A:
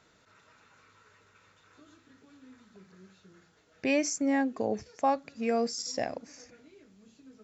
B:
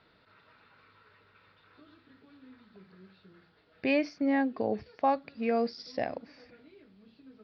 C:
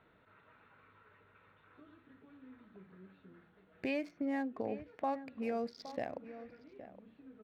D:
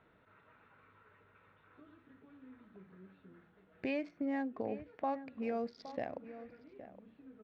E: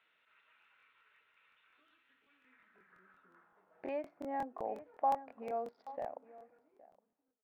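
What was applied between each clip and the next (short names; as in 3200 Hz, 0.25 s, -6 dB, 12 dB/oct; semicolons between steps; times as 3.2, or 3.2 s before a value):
steep low-pass 4800 Hz 72 dB/oct
Wiener smoothing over 9 samples; compressor 2:1, threshold -37 dBFS, peak gain reduction 9 dB; outdoor echo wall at 140 m, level -13 dB; gain -1.5 dB
air absorption 110 m
ending faded out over 2.10 s; band-pass sweep 2900 Hz -> 800 Hz, 2.23–3.8; crackling interface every 0.18 s, samples 1024, repeat, from 0.6; gain +6.5 dB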